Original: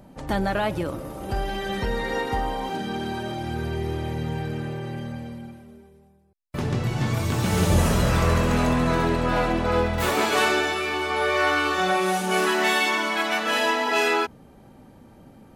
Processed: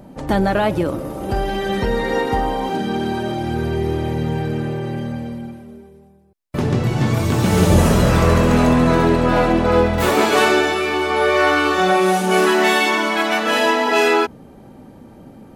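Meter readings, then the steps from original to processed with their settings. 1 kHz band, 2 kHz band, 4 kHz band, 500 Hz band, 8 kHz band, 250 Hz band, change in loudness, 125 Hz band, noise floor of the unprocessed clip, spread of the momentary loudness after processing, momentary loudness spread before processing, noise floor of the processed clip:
+6.0 dB, +4.5 dB, +4.0 dB, +8.0 dB, +4.0 dB, +8.5 dB, +6.5 dB, +6.0 dB, -51 dBFS, 10 LU, 11 LU, -43 dBFS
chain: peaking EQ 320 Hz +5 dB 2.6 oct; trim +4 dB

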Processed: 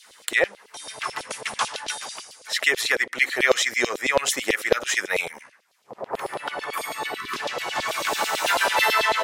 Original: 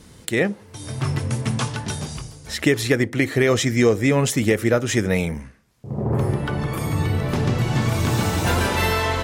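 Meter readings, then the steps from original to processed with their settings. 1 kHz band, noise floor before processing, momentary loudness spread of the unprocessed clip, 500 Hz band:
+2.0 dB, -47 dBFS, 10 LU, -4.5 dB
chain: hum notches 50/100/150 Hz; LFO high-pass saw down 9.1 Hz 490–4000 Hz; spectral selection erased 7.17–7.37 s, 430–980 Hz

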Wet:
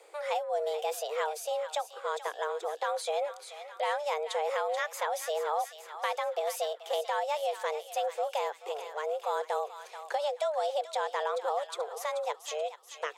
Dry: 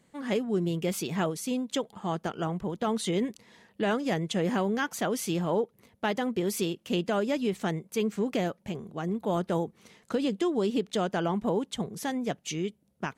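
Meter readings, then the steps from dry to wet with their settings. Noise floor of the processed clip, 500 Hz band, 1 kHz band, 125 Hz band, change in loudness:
-51 dBFS, -1.0 dB, +3.5 dB, under -40 dB, -3.0 dB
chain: thinning echo 432 ms, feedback 52%, high-pass 850 Hz, level -10.5 dB; frequency shift +300 Hz; three bands compressed up and down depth 40%; trim -3.5 dB

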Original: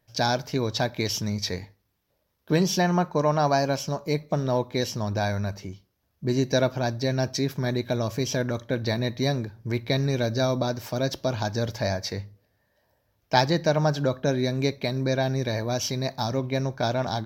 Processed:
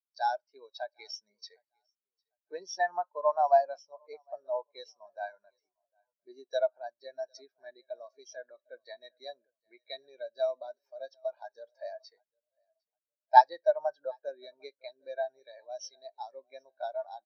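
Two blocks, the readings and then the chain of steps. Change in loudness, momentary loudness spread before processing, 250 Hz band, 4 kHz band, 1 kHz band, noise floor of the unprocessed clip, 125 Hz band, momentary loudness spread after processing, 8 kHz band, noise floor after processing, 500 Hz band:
-5.0 dB, 6 LU, under -35 dB, -17.0 dB, 0.0 dB, -73 dBFS, under -40 dB, 23 LU, under -15 dB, under -85 dBFS, -7.0 dB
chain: high-pass 740 Hz 12 dB/octave; feedback delay 753 ms, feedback 49%, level -15 dB; spectral contrast expander 2.5:1; trim +1.5 dB

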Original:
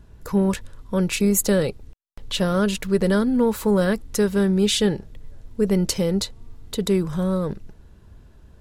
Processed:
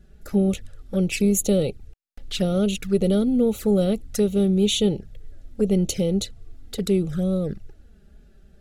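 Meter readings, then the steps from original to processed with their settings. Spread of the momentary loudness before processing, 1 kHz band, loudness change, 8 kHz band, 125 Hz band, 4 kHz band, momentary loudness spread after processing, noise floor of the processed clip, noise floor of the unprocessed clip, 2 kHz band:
11 LU, -9.0 dB, -0.5 dB, -2.5 dB, 0.0 dB, -2.0 dB, 11 LU, -52 dBFS, -49 dBFS, -7.0 dB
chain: Butterworth band-stop 1 kHz, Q 2.7; touch-sensitive flanger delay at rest 6 ms, full sweep at -18.5 dBFS

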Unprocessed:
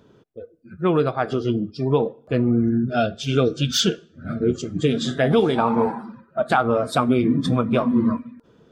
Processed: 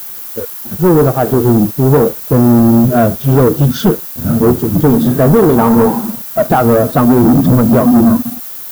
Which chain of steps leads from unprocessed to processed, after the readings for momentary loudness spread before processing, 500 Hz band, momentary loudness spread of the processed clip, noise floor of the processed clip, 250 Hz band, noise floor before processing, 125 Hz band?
6 LU, +10.0 dB, 10 LU, -26 dBFS, +12.0 dB, -56 dBFS, +13.0 dB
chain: tilt shelf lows +7.5 dB; waveshaping leveller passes 3; added noise blue -23 dBFS; in parallel at -6 dB: small samples zeroed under -20 dBFS; on the sum: high-order bell 4.4 kHz -8 dB 2.6 oct; trim -4.5 dB

